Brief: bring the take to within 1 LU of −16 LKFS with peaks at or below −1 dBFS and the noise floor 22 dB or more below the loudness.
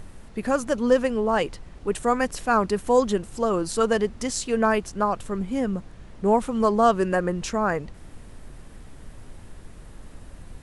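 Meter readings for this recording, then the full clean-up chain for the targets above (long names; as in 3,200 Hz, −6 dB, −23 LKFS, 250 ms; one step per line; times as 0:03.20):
background noise floor −45 dBFS; target noise floor −46 dBFS; integrated loudness −24.0 LKFS; sample peak −7.0 dBFS; target loudness −16.0 LKFS
→ noise reduction from a noise print 6 dB
level +8 dB
brickwall limiter −1 dBFS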